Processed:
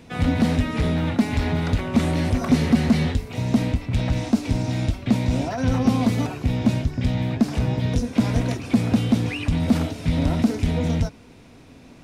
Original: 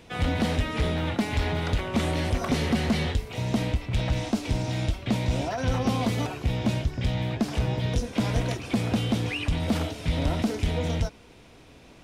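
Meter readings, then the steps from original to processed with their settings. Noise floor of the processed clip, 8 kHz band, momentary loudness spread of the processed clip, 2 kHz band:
−47 dBFS, +1.5 dB, 4 LU, +1.0 dB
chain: thirty-one-band graphic EQ 100 Hz +5 dB, 160 Hz +6 dB, 250 Hz +9 dB, 3,150 Hz −4 dB
level +1.5 dB

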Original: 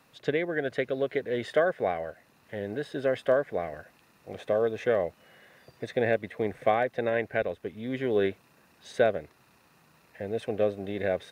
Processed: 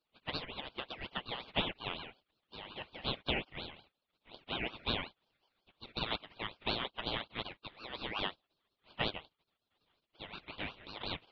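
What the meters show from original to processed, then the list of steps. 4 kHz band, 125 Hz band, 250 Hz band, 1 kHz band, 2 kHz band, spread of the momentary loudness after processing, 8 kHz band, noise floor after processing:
+8.0 dB, −7.5 dB, −11.5 dB, −9.0 dB, −7.5 dB, 13 LU, can't be measured, below −85 dBFS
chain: gate on every frequency bin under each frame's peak −20 dB weak
single-sideband voice off tune +130 Hz 200–2,300 Hz
ring modulator whose carrier an LFO sweeps 1,500 Hz, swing 35%, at 5.5 Hz
level +8 dB

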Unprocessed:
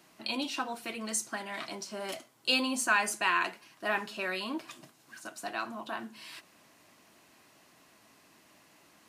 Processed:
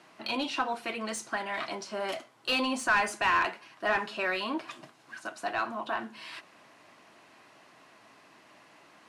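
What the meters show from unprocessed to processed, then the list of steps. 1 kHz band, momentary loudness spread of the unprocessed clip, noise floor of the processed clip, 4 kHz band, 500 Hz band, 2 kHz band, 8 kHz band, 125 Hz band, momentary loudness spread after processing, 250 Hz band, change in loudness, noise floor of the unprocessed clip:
+4.0 dB, 19 LU, −59 dBFS, −0.5 dB, +4.0 dB, +2.0 dB, −5.5 dB, +1.5 dB, 16 LU, +1.0 dB, +1.5 dB, −62 dBFS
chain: Chebyshev low-pass filter 12,000 Hz, order 6
parametric band 120 Hz +5 dB 0.77 octaves
mid-hump overdrive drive 16 dB, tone 1,400 Hz, clips at −13.5 dBFS

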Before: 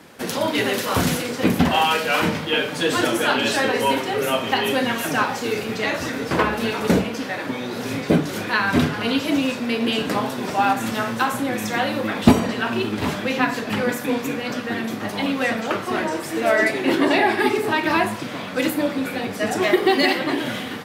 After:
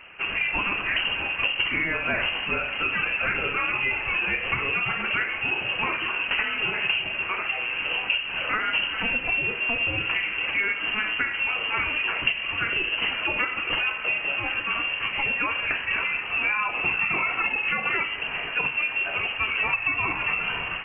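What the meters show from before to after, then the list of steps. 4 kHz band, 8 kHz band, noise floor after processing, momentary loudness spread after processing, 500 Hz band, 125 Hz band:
−1.5 dB, below −40 dB, −32 dBFS, 2 LU, −15.5 dB, −13.0 dB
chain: downward compressor 6 to 1, threshold −22 dBFS, peak gain reduction 14.5 dB
voice inversion scrambler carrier 3,000 Hz

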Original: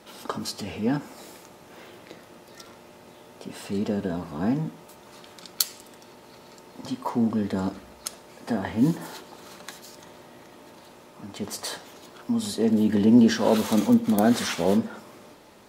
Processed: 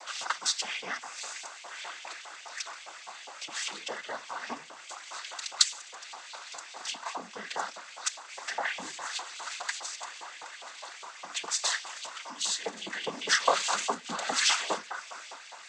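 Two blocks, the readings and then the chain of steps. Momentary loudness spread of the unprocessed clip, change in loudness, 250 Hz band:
22 LU, −7.5 dB, −27.5 dB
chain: high-shelf EQ 6,000 Hz +11 dB
in parallel at +1 dB: downward compressor, threshold −37 dBFS, peak gain reduction 25 dB
on the sum: auto-filter high-pass saw up 4.9 Hz 790–3,000 Hz
cochlear-implant simulation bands 16
level −1.5 dB

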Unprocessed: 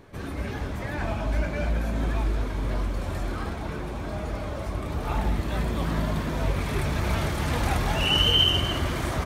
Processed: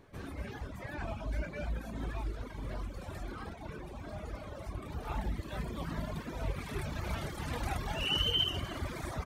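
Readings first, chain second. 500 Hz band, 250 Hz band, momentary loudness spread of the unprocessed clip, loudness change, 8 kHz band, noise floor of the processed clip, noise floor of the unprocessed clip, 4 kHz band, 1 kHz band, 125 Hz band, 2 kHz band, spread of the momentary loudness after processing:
−11.0 dB, −11.5 dB, 12 LU, −11.0 dB, −11.0 dB, −46 dBFS, −33 dBFS, −10.0 dB, −10.5 dB, −11.5 dB, −10.5 dB, 13 LU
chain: reverb reduction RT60 1.6 s
level −8 dB

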